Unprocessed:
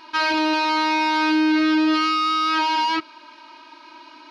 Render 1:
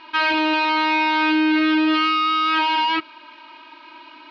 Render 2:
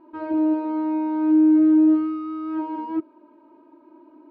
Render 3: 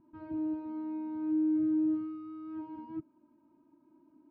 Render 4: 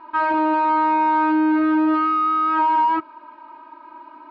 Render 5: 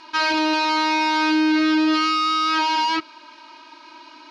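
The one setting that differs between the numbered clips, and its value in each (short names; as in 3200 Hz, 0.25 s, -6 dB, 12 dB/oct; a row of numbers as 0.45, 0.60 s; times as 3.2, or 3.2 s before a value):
synth low-pass, frequency: 3000, 430, 160, 1100, 7900 Hz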